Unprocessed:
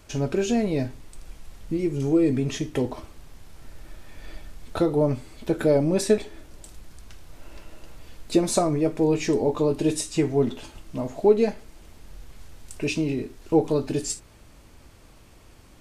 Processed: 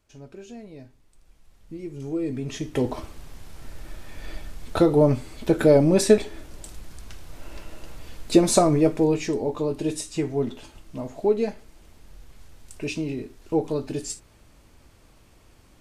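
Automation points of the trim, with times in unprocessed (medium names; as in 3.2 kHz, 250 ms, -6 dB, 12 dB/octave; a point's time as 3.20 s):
0.82 s -18 dB
2.40 s -6 dB
2.96 s +4 dB
8.85 s +4 dB
9.33 s -3.5 dB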